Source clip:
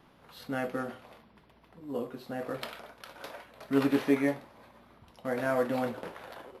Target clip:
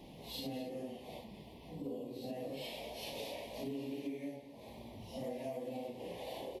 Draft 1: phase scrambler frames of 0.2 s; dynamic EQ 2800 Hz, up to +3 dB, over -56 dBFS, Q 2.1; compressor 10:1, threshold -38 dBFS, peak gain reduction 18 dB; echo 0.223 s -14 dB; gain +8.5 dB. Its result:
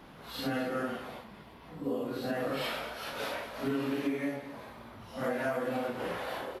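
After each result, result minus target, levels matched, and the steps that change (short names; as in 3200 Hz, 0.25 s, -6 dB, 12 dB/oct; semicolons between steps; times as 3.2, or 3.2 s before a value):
compressor: peak gain reduction -9.5 dB; 1000 Hz band +2.5 dB
change: compressor 10:1, threshold -48.5 dBFS, peak gain reduction 27.5 dB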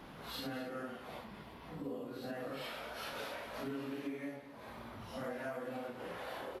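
1000 Hz band +4.0 dB
add after dynamic EQ: Butterworth band-stop 1400 Hz, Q 0.85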